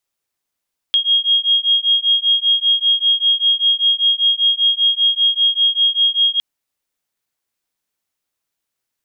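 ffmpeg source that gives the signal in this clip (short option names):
-f lavfi -i "aevalsrc='0.168*(sin(2*PI*3260*t)+sin(2*PI*3265.1*t))':d=5.46:s=44100"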